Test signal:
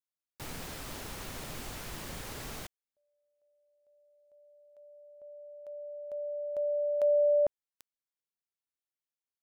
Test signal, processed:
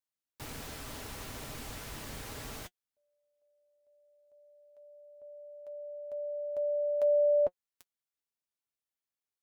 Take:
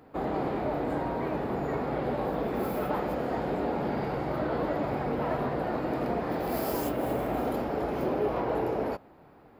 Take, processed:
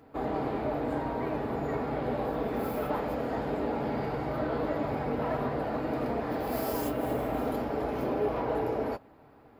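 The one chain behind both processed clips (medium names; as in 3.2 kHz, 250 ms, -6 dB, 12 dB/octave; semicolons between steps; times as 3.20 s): comb of notches 180 Hz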